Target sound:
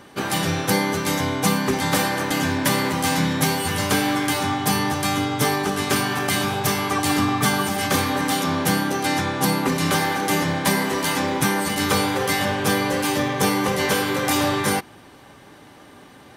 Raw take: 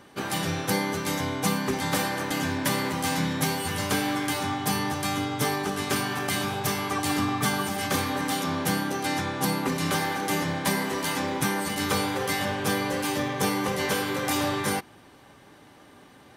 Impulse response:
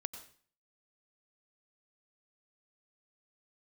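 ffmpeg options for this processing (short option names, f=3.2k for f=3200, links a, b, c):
-af "acontrast=45"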